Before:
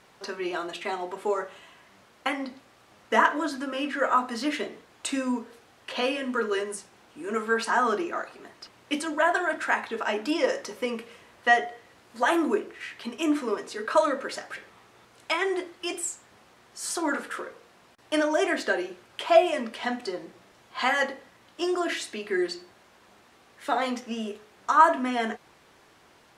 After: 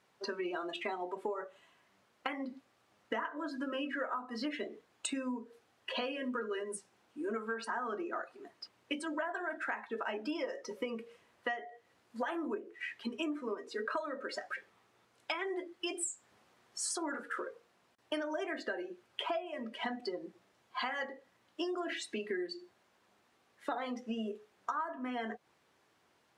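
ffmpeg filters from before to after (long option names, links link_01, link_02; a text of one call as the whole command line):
ffmpeg -i in.wav -filter_complex "[0:a]asplit=3[link_01][link_02][link_03];[link_01]atrim=end=16.012[link_04];[link_02]atrim=start=16.008:end=16.972,asetpts=PTS-STARTPTS,volume=3dB[link_05];[link_03]atrim=start=16.968[link_06];[link_04][link_05]acrossfade=duration=0.004:curve1=hsin:curve2=hsin[link_07];[link_07][link_06]acrossfade=duration=0.004:curve1=hsin:curve2=hsin,highpass=75,afftdn=noise_reduction=15:noise_floor=-35,acompressor=threshold=-35dB:ratio=12,volume=1dB" out.wav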